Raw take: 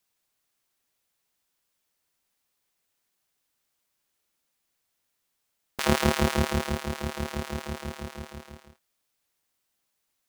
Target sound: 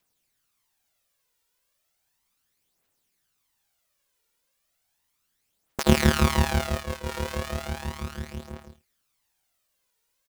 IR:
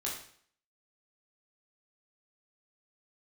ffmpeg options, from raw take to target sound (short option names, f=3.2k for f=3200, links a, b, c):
-filter_complex "[0:a]aecho=1:1:80:0.141,aphaser=in_gain=1:out_gain=1:delay=2.2:decay=0.53:speed=0.35:type=triangular,asettb=1/sr,asplit=3[a][b][c];[a]atrim=end=5.834[d];[b]atrim=start=5.83:end=7.09,asetpts=PTS-STARTPTS,afade=t=in:d=0.004:c=qsin,afade=t=out:st=1.256:d=0.004:c=qsin,agate=range=-33dB:threshold=-26dB:ratio=3:detection=peak[e];[c]atrim=start=7.086[f];[d][e]acrossfade=d=0.004:c1=hsin:c2=qsin[g];[g][f]acrossfade=d=0.004:c1=qsin:c2=hsin,volume=1dB"